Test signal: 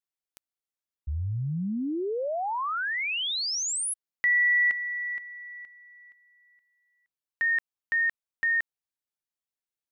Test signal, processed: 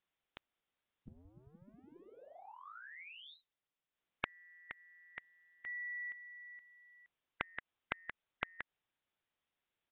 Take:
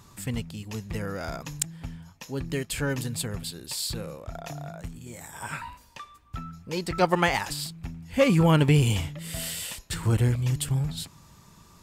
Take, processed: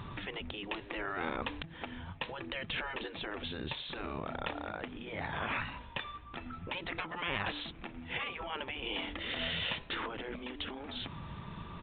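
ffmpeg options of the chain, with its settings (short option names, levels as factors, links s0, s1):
-af "acompressor=threshold=0.0224:ratio=8:attack=2.8:release=200:knee=6:detection=peak,afftfilt=real='re*lt(hypot(re,im),0.0355)':imag='im*lt(hypot(re,im),0.0355)':win_size=1024:overlap=0.75,aresample=8000,aresample=44100,volume=2.82"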